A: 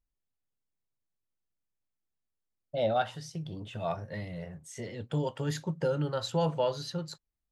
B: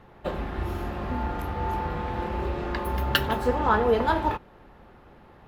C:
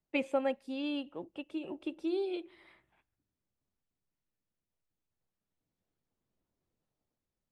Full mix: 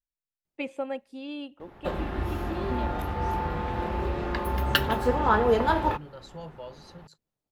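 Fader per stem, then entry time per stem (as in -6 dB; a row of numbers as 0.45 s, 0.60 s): -13.0 dB, 0.0 dB, -1.5 dB; 0.00 s, 1.60 s, 0.45 s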